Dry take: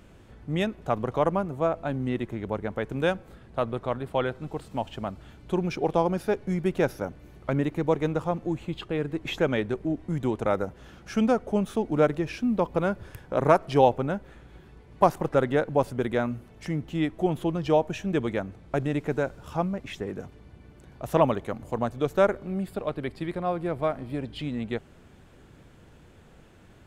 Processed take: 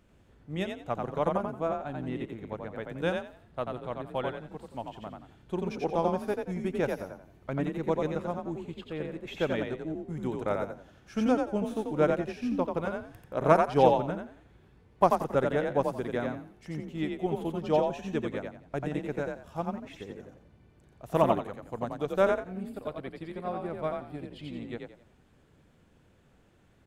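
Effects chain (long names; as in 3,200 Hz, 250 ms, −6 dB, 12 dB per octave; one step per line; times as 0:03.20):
echo with shifted repeats 88 ms, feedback 33%, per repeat +38 Hz, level −3 dB
expander for the loud parts 1.5 to 1, over −33 dBFS
level −2 dB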